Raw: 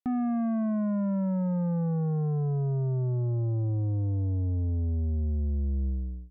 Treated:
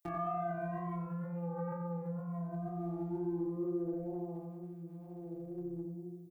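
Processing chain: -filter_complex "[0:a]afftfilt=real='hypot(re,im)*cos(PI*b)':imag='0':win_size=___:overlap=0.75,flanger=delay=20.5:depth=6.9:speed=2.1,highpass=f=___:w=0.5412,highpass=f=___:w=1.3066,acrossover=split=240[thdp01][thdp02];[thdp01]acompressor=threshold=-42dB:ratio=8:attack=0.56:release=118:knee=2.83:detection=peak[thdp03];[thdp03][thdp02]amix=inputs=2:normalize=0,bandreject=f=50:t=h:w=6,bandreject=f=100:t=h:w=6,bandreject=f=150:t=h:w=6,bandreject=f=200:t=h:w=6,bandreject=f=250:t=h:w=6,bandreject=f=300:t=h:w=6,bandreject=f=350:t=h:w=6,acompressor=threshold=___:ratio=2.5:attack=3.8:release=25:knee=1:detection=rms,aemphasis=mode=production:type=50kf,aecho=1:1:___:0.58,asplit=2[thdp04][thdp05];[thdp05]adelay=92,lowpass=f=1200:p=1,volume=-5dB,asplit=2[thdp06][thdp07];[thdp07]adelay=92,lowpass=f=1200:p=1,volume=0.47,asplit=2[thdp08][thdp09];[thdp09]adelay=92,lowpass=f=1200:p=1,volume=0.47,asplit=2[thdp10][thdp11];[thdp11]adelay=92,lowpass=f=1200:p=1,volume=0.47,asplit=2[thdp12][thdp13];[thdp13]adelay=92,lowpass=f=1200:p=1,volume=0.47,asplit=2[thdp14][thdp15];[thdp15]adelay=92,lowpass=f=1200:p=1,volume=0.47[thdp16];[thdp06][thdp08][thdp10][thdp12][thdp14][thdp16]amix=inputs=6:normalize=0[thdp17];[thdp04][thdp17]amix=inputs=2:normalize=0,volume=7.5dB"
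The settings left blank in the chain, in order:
1024, 44, 44, -43dB, 2.6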